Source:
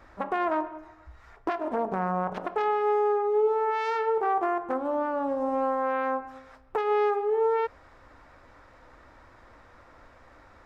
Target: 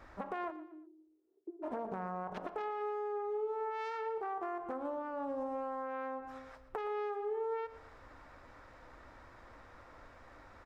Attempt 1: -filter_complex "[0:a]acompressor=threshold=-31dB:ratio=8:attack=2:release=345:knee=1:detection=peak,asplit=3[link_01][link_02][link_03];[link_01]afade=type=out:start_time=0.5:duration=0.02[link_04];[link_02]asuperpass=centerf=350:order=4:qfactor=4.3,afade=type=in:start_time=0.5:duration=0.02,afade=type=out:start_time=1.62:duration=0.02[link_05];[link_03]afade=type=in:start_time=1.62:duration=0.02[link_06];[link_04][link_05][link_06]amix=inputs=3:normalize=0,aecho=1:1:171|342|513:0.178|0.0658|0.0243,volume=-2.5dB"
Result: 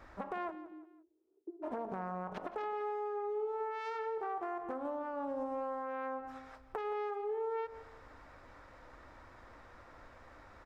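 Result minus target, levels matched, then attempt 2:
echo 53 ms late
-filter_complex "[0:a]acompressor=threshold=-31dB:ratio=8:attack=2:release=345:knee=1:detection=peak,asplit=3[link_01][link_02][link_03];[link_01]afade=type=out:start_time=0.5:duration=0.02[link_04];[link_02]asuperpass=centerf=350:order=4:qfactor=4.3,afade=type=in:start_time=0.5:duration=0.02,afade=type=out:start_time=1.62:duration=0.02[link_05];[link_03]afade=type=in:start_time=1.62:duration=0.02[link_06];[link_04][link_05][link_06]amix=inputs=3:normalize=0,aecho=1:1:118|236|354:0.178|0.0658|0.0243,volume=-2.5dB"

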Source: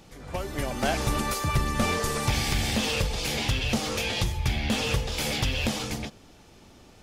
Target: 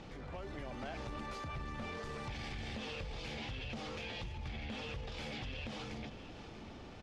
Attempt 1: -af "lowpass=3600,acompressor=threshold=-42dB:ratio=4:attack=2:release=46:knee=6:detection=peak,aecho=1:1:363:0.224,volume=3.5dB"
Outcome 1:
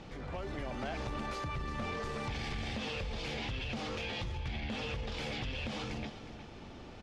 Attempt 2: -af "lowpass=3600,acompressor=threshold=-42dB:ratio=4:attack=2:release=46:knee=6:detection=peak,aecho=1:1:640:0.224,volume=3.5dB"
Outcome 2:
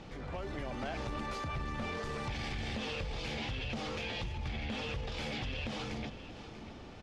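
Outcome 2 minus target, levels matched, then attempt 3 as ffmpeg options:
downward compressor: peak gain reduction −5 dB
-af "lowpass=3600,acompressor=threshold=-48.5dB:ratio=4:attack=2:release=46:knee=6:detection=peak,aecho=1:1:640:0.224,volume=3.5dB"

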